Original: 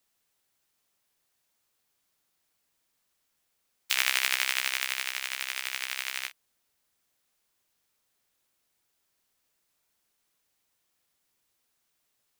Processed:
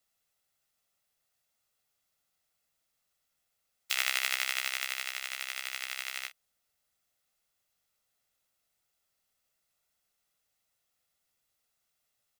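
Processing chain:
comb filter 1.5 ms, depth 41%
level −4.5 dB

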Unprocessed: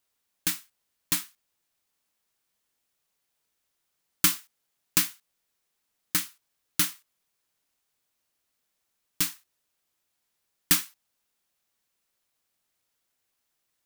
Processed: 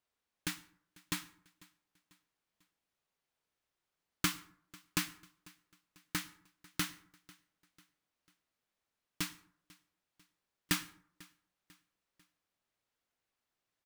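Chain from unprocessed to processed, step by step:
low-pass filter 2,600 Hz 6 dB per octave
repeating echo 495 ms, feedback 46%, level −24 dB
dense smooth reverb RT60 0.6 s, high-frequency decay 0.5×, pre-delay 85 ms, DRR 20 dB
level −3.5 dB

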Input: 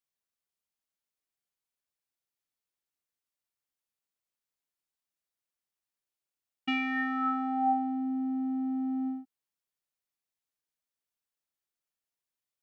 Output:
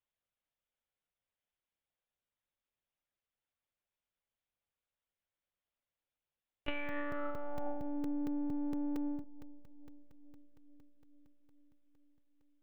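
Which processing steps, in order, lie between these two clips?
one-pitch LPC vocoder at 8 kHz 290 Hz
parametric band 540 Hz +7 dB 0.44 octaves
bucket-brigade delay 432 ms, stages 2,048, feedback 69%, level −20.5 dB
downward compressor 5 to 1, threshold −33 dBFS, peak gain reduction 10.5 dB
regular buffer underruns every 0.23 s, samples 128, zero, from 0:00.91

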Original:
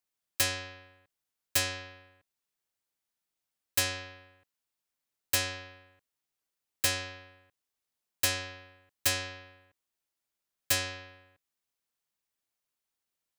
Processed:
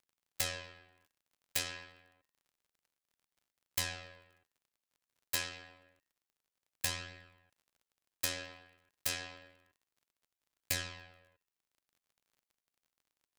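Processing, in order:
flanger 0.28 Hz, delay 0.4 ms, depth 4.5 ms, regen +41%
hum removal 206.1 Hz, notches 40
surface crackle 50 per second −56 dBFS
amplitude modulation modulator 84 Hz, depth 55%

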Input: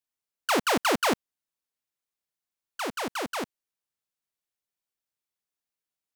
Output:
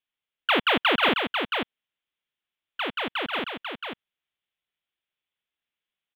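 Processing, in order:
drawn EQ curve 950 Hz 0 dB, 3,400 Hz +10 dB, 5,400 Hz −29 dB, 15,000 Hz −14 dB
single-tap delay 493 ms −5.5 dB

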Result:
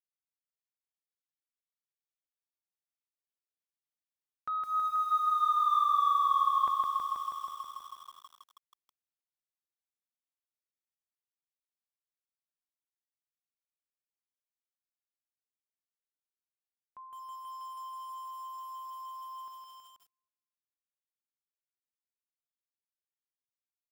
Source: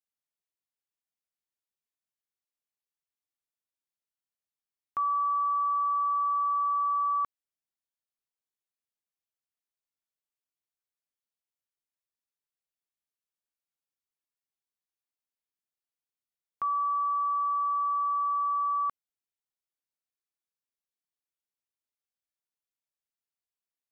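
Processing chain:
source passing by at 0:05.99, 35 m/s, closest 28 metres
dynamic equaliser 1,100 Hz, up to −3 dB, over −42 dBFS, Q 6.2
amplitude tremolo 3.3 Hz, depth 31%
soft clipping −27 dBFS, distortion −23 dB
on a send: feedback echo with a high-pass in the loop 267 ms, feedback 26%, high-pass 560 Hz, level −17.5 dB
on the sum: feedback echo at a low word length 161 ms, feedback 80%, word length 10 bits, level −3 dB
level +3 dB

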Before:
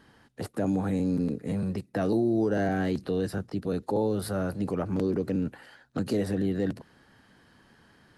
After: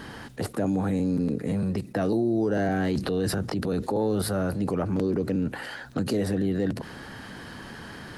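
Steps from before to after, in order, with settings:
0:02.83–0:04.22: transient designer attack −3 dB, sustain +8 dB
envelope flattener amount 50%

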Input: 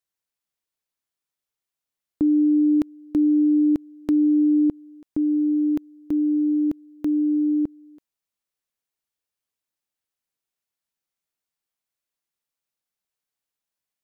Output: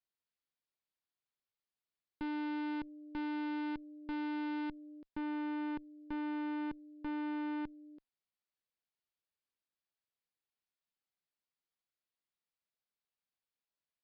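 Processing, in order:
tube saturation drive 33 dB, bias 0.6
downsampling to 11,025 Hz
level −4 dB

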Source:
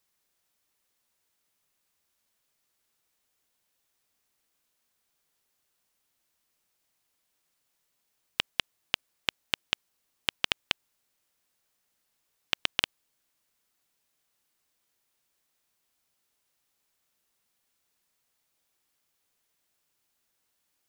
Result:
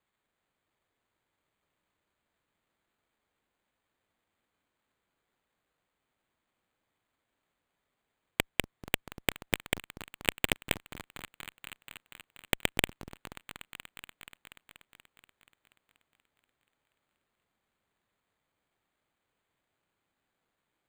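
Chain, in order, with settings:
dynamic equaliser 560 Hz, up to −6 dB, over −56 dBFS, Q 0.93
echo whose low-pass opens from repeat to repeat 240 ms, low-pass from 400 Hz, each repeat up 1 octave, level −3 dB
harmonic generator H 6 −10 dB, 7 −12 dB, 8 −15 dB, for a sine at −3 dBFS
bad sample-rate conversion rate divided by 8×, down filtered, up hold
level +4.5 dB

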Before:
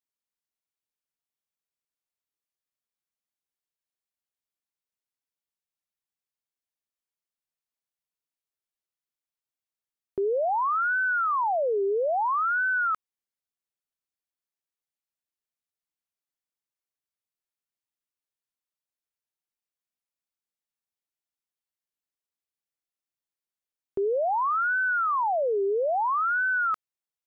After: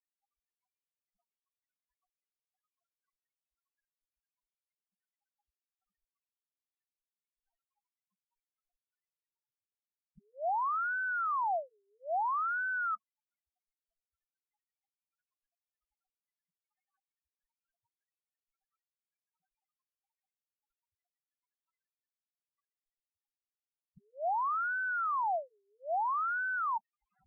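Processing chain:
turntable brake at the end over 0.70 s
reversed playback
upward compression, threshold −30 dBFS
reversed playback
elliptic band-stop filter 210–680 Hz, stop band 40 dB
spectral peaks only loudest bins 4
low-pass filter 1,500 Hz 24 dB per octave
level −5 dB

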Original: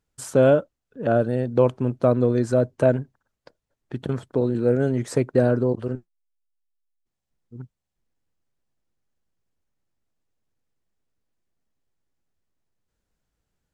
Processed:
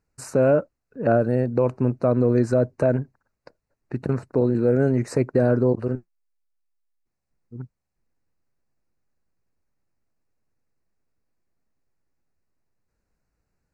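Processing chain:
Butterworth band-reject 3,300 Hz, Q 2.6
high-shelf EQ 5,700 Hz −8 dB
boost into a limiter +10.5 dB
level −8 dB

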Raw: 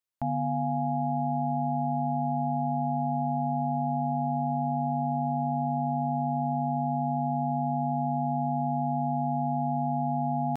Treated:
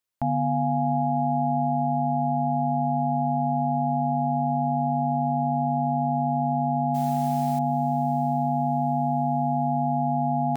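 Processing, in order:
0:06.94–0:07.59: noise that follows the level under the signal 22 dB
feedback delay with all-pass diffusion 772 ms, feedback 46%, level −15 dB
level +4.5 dB

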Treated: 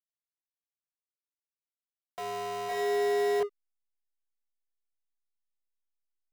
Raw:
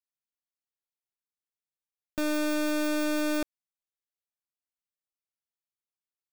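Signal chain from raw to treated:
0:02.67–0:03.40: flutter between parallel walls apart 3.3 metres, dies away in 0.61 s
frequency shifter +410 Hz
slack as between gear wheels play −25.5 dBFS
level −6 dB

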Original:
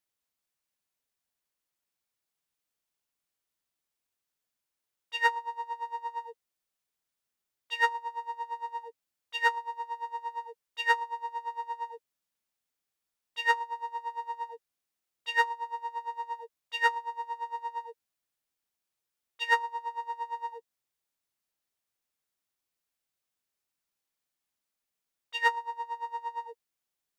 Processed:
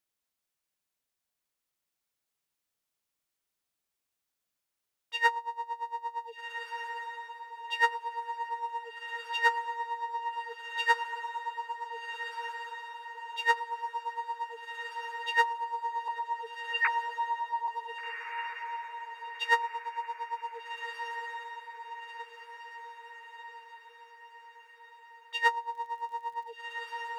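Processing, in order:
0:16.08–0:17.68: three sine waves on the formant tracks
feedback delay with all-pass diffusion 1,540 ms, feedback 51%, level −7 dB
0:25.72–0:26.49: surface crackle 95 per second −50 dBFS

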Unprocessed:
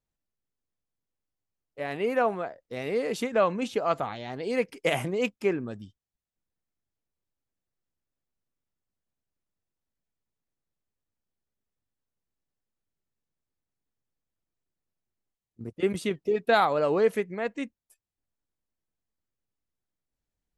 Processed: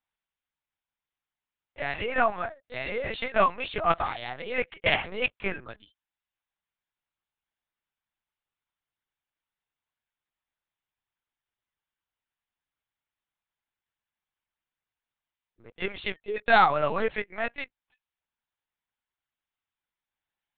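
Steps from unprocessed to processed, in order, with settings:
high-pass filter 880 Hz 12 dB per octave
linear-prediction vocoder at 8 kHz pitch kept
level +6.5 dB

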